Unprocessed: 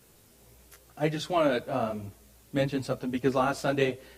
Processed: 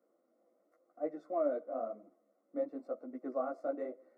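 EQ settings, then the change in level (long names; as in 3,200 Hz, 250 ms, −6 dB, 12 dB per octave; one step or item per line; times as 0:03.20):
Savitzky-Golay smoothing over 65 samples
four-pole ladder high-pass 320 Hz, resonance 45%
phaser with its sweep stopped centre 610 Hz, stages 8
0.0 dB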